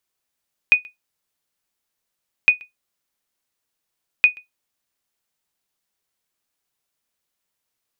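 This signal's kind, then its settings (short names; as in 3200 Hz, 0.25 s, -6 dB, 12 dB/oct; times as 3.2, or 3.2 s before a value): sonar ping 2480 Hz, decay 0.15 s, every 1.76 s, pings 3, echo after 0.13 s, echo -27 dB -3.5 dBFS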